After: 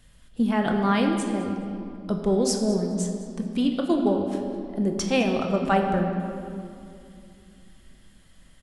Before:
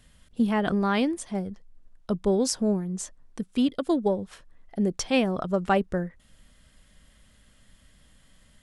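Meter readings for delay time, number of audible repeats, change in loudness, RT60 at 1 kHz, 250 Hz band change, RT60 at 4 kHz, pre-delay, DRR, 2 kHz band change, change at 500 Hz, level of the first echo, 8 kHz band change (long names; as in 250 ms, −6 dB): 210 ms, 1, +2.0 dB, 2.4 s, +2.5 dB, 1.7 s, 6 ms, 2.5 dB, +2.0 dB, +2.0 dB, −16.5 dB, +1.0 dB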